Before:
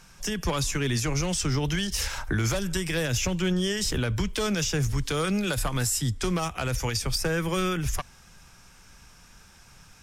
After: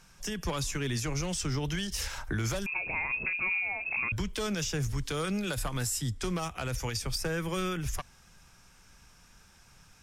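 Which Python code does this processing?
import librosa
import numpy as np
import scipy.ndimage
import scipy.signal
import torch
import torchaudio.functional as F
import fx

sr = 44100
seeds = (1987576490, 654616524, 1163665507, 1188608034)

y = fx.freq_invert(x, sr, carrier_hz=2600, at=(2.66, 4.12))
y = y * 10.0 ** (-5.5 / 20.0)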